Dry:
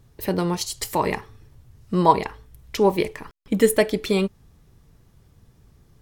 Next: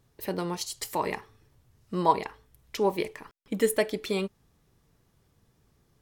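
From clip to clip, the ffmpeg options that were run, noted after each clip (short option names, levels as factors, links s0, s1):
-af "lowshelf=f=150:g=-10,volume=0.501"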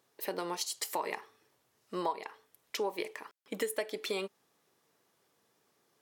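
-af "highpass=400,acompressor=threshold=0.0316:ratio=8"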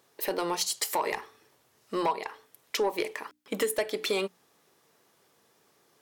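-af "aeval=exprs='0.141*sin(PI/2*2*val(0)/0.141)':c=same,bandreject=f=60:t=h:w=6,bandreject=f=120:t=h:w=6,bandreject=f=180:t=h:w=6,bandreject=f=240:t=h:w=6,bandreject=f=300:t=h:w=6,volume=0.75"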